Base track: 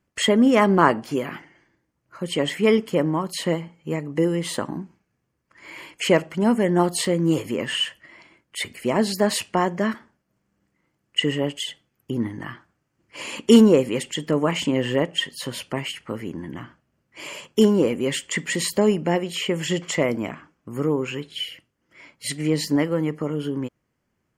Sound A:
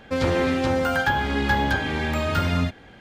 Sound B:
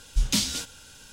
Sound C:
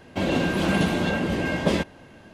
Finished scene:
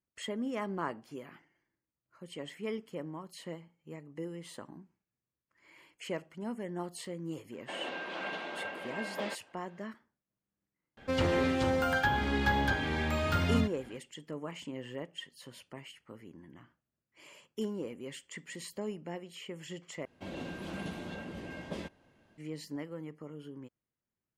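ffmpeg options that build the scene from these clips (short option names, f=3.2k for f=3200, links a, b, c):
-filter_complex "[3:a]asplit=2[a][b];[0:a]volume=-19.5dB[c];[a]highpass=610,lowpass=3.4k[d];[c]asplit=2[e][f];[e]atrim=end=20.054[g];[b]atrim=end=2.33,asetpts=PTS-STARTPTS,volume=-18dB[h];[f]atrim=start=22.376[i];[d]atrim=end=2.33,asetpts=PTS-STARTPTS,volume=-10dB,afade=t=in:d=0.004:c=hsin,afade=t=out:st=2.326:d=0.004:c=hsin,adelay=7520[j];[1:a]atrim=end=3,asetpts=PTS-STARTPTS,volume=-7dB,afade=t=in:d=0.004:c=hsin,afade=t=out:st=2.996:d=0.004:c=hsin,adelay=10970[k];[g][h]acrossfade=d=0.004:c1=hsin:c2=hsin[l];[l][i]acrossfade=d=0.004:c1=hsin:c2=hsin[m];[m][j][k]amix=inputs=3:normalize=0"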